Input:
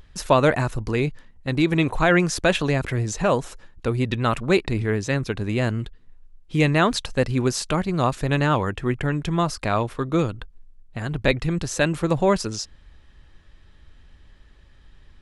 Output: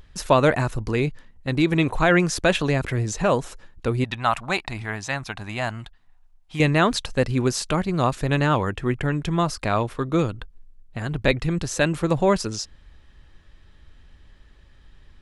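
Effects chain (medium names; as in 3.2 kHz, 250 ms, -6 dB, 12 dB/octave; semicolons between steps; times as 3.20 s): 4.04–6.60 s: resonant low shelf 580 Hz -8 dB, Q 3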